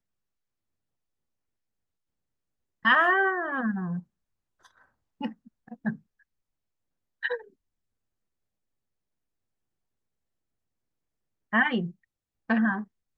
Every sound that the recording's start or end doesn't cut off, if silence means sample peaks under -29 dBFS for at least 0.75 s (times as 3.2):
2.85–3.99
5.21–5.91
7.23–7.36